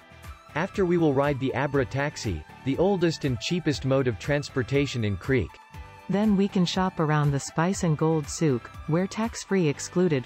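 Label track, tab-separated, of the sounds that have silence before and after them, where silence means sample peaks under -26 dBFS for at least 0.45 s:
0.560000	5.440000	sound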